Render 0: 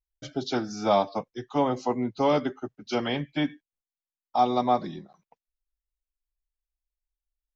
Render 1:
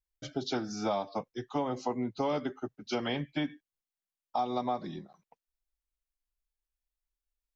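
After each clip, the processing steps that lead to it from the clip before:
downward compressor 5 to 1, threshold −26 dBFS, peak gain reduction 9 dB
level −2 dB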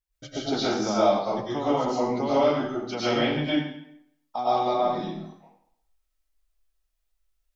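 convolution reverb RT60 0.70 s, pre-delay 75 ms, DRR −9 dB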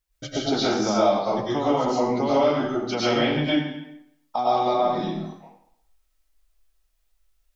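downward compressor 1.5 to 1, threshold −33 dBFS, peak gain reduction 6.5 dB
level +7 dB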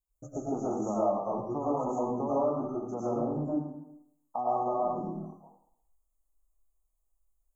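Chebyshev band-stop filter 1,200–6,600 Hz, order 5
level −7.5 dB

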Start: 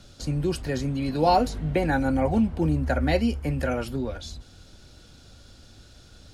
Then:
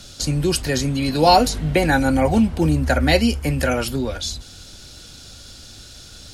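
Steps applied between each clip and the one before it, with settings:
high-shelf EQ 2,600 Hz +11.5 dB
level +5.5 dB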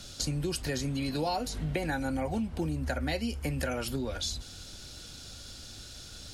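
downward compressor 6 to 1, threshold −24 dBFS, peak gain reduction 14.5 dB
level −5 dB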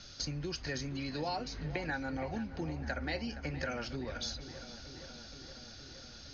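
Chebyshev low-pass with heavy ripple 6,500 Hz, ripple 6 dB
feedback echo with a low-pass in the loop 469 ms, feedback 77%, low-pass 3,200 Hz, level −13 dB
level −1 dB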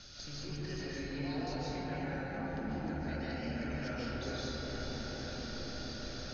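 brickwall limiter −33.5 dBFS, peak gain reduction 11 dB
downward compressor, threshold −44 dBFS, peak gain reduction 7 dB
convolution reverb RT60 4.9 s, pre-delay 105 ms, DRR −9.5 dB
level −1.5 dB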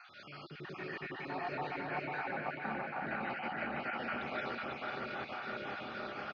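time-frequency cells dropped at random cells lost 38%
loudspeaker in its box 280–2,900 Hz, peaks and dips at 280 Hz −10 dB, 490 Hz −8 dB, 790 Hz +4 dB, 1,200 Hz +9 dB, 2,400 Hz +4 dB
repeating echo 498 ms, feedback 48%, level −3 dB
level +4 dB

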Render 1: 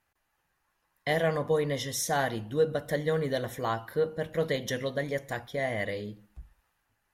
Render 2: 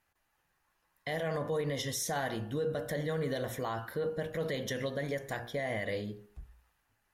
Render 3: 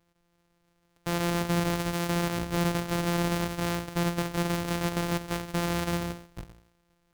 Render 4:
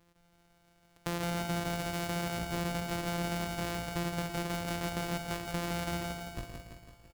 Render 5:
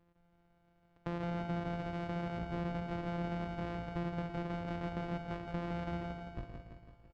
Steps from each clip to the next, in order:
hum removal 59 Hz, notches 30; brickwall limiter −25.5 dBFS, peak gain reduction 9.5 dB
samples sorted by size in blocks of 256 samples; level +6 dB
downward compressor 2.5 to 1, threshold −41 dBFS, peak gain reduction 12 dB; on a send: repeating echo 167 ms, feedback 59%, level −5 dB; on the sum: level +4 dB
head-to-tape spacing loss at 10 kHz 36 dB; level −1.5 dB

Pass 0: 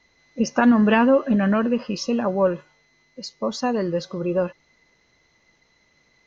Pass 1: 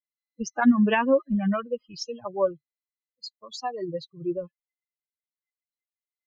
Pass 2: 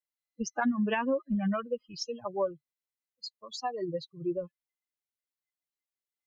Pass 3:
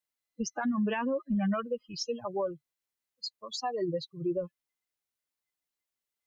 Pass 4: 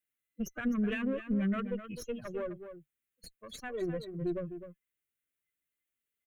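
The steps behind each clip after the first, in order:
spectral dynamics exaggerated over time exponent 3
downward compressor 4 to 1, threshold −24 dBFS, peak gain reduction 9.5 dB; level −2 dB
brickwall limiter −27 dBFS, peak gain reduction 9.5 dB; level +3.5 dB
one-sided soft clipper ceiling −32 dBFS; phaser with its sweep stopped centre 2,100 Hz, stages 4; slap from a distant wall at 44 metres, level −10 dB; level +2 dB

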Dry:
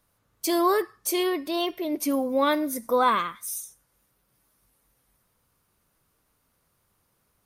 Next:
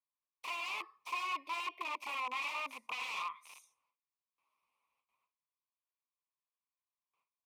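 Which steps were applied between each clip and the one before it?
noise gate with hold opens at −58 dBFS
wrap-around overflow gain 24 dB
pair of resonant band-passes 1,600 Hz, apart 1.2 octaves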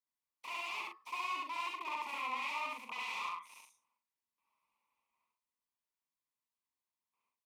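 hollow resonant body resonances 230/920/2,000 Hz, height 8 dB
on a send: loudspeakers that aren't time-aligned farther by 23 metres 0 dB, 37 metres −6 dB
on the sum: level −5 dB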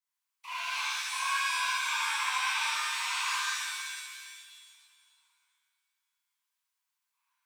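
inverse Chebyshev high-pass filter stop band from 150 Hz, stop band 80 dB
reverb with rising layers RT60 1.8 s, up +7 semitones, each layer −2 dB, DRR −6.5 dB

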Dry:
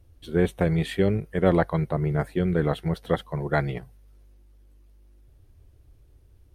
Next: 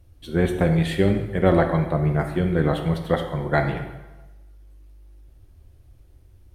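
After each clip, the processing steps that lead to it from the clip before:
notch filter 430 Hz, Q 12
dense smooth reverb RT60 1.1 s, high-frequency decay 0.8×, DRR 4.5 dB
level +2.5 dB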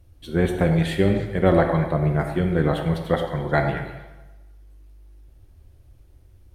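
echo through a band-pass that steps 103 ms, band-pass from 720 Hz, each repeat 1.4 octaves, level −7 dB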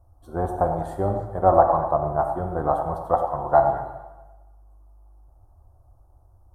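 drawn EQ curve 110 Hz 0 dB, 160 Hz −10 dB, 290 Hz −4 dB, 460 Hz −3 dB, 740 Hz +14 dB, 1,200 Hz +8 dB, 2,300 Hz −30 dB, 3,700 Hz −21 dB, 5,500 Hz −10 dB, 9,300 Hz −5 dB
level −3.5 dB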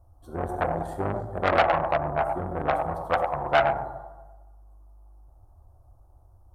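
hard clipping −8 dBFS, distortion −22 dB
saturating transformer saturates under 1,200 Hz

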